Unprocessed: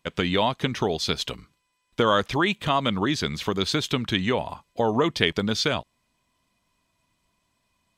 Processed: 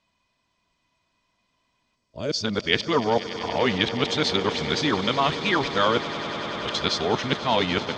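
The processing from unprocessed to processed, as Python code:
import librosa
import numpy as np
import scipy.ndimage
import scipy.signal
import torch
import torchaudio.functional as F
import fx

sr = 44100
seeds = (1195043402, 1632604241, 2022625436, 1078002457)

p1 = x[::-1].copy()
p2 = scipy.signal.sosfilt(scipy.signal.butter(4, 6400.0, 'lowpass', fs=sr, output='sos'), p1)
p3 = fx.low_shelf(p2, sr, hz=300.0, db=-5.0)
p4 = fx.rider(p3, sr, range_db=10, speed_s=0.5)
p5 = p3 + (p4 * librosa.db_to_amplitude(2.0))
p6 = fx.spec_box(p5, sr, start_s=1.96, length_s=0.47, low_hz=650.0, high_hz=4300.0, gain_db=-13)
p7 = p6 + fx.echo_swell(p6, sr, ms=97, loudest=8, wet_db=-17.0, dry=0)
y = p7 * librosa.db_to_amplitude(-5.5)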